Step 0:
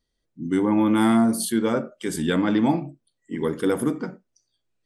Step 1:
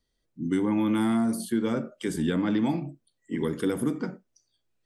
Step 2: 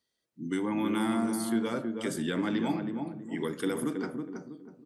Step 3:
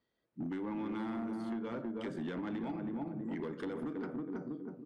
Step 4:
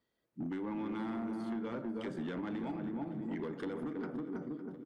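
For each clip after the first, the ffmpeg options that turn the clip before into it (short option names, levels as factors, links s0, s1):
-filter_complex "[0:a]acrossover=split=330|1800[s0][s1][s2];[s0]acompressor=threshold=0.0631:ratio=4[s3];[s1]acompressor=threshold=0.0224:ratio=4[s4];[s2]acompressor=threshold=0.01:ratio=4[s5];[s3][s4][s5]amix=inputs=3:normalize=0"
-filter_complex "[0:a]highpass=110,lowshelf=f=440:g=-8,asplit=2[s0][s1];[s1]adelay=322,lowpass=f=830:p=1,volume=0.668,asplit=2[s2][s3];[s3]adelay=322,lowpass=f=830:p=1,volume=0.39,asplit=2[s4][s5];[s5]adelay=322,lowpass=f=830:p=1,volume=0.39,asplit=2[s6][s7];[s7]adelay=322,lowpass=f=830:p=1,volume=0.39,asplit=2[s8][s9];[s9]adelay=322,lowpass=f=830:p=1,volume=0.39[s10];[s0][s2][s4][s6][s8][s10]amix=inputs=6:normalize=0"
-af "acompressor=threshold=0.01:ratio=6,asoftclip=type=hard:threshold=0.0119,adynamicsmooth=sensitivity=5.5:basefreq=2200,volume=1.78"
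-af "aecho=1:1:556|1112|1668|2224:0.158|0.065|0.0266|0.0109"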